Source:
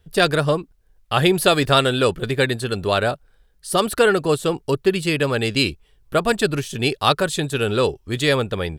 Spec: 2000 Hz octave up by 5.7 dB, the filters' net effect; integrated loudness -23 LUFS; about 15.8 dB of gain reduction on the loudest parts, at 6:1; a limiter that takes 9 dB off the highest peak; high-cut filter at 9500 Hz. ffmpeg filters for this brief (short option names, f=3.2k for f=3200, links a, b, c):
-af "lowpass=9.5k,equalizer=f=2k:t=o:g=8,acompressor=threshold=-27dB:ratio=6,volume=10.5dB,alimiter=limit=-11.5dB:level=0:latency=1"